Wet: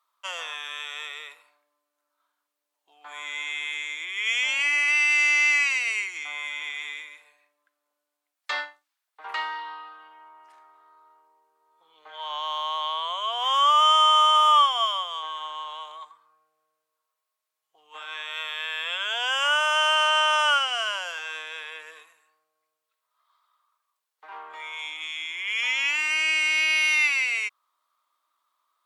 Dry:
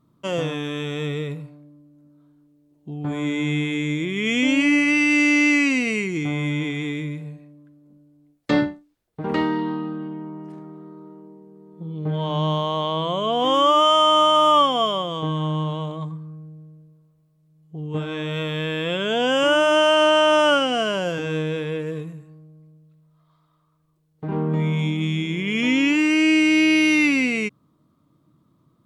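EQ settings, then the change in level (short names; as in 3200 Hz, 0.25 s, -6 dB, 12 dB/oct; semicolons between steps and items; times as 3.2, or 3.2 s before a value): HPF 940 Hz 24 dB/oct; 0.0 dB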